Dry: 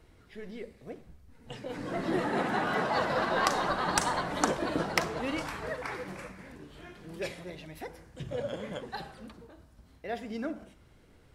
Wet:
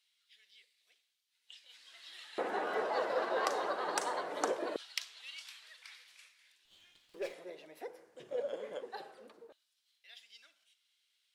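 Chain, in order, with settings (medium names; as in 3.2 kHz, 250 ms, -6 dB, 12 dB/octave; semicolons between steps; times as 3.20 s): LFO high-pass square 0.21 Hz 440–3400 Hz; 6.65–7.34 s: sliding maximum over 3 samples; trim -8.5 dB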